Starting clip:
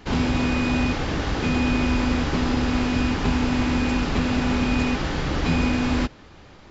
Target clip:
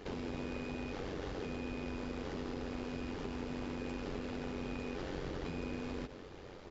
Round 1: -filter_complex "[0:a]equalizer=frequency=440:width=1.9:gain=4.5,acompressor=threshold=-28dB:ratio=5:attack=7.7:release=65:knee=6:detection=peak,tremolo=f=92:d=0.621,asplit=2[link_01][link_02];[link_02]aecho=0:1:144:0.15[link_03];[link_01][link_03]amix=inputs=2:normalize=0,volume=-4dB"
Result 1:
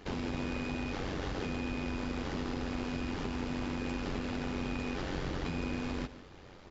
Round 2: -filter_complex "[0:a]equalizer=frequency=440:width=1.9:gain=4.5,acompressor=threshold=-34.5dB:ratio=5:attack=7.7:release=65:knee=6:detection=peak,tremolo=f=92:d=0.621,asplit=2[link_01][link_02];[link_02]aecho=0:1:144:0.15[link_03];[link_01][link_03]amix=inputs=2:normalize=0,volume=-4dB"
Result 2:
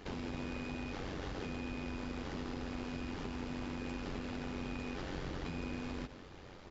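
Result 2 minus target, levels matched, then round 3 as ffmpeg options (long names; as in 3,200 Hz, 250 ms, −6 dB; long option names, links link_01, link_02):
500 Hz band −3.0 dB
-filter_complex "[0:a]equalizer=frequency=440:width=1.9:gain=11,acompressor=threshold=-34.5dB:ratio=5:attack=7.7:release=65:knee=6:detection=peak,tremolo=f=92:d=0.621,asplit=2[link_01][link_02];[link_02]aecho=0:1:144:0.15[link_03];[link_01][link_03]amix=inputs=2:normalize=0,volume=-4dB"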